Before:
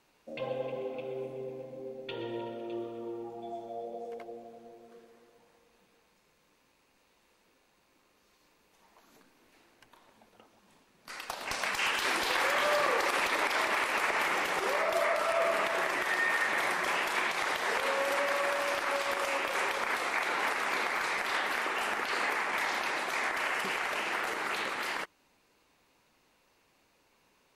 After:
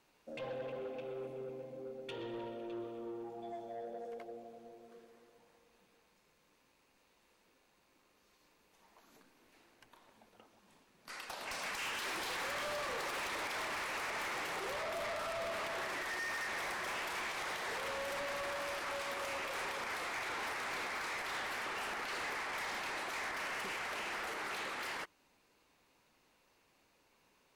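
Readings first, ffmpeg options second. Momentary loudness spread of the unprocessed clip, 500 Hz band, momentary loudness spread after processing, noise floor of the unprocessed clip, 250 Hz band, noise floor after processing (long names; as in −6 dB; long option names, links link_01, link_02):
13 LU, −8.5 dB, 8 LU, −69 dBFS, −6.5 dB, −72 dBFS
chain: -af "asoftclip=type=tanh:threshold=-34dB,volume=-3dB"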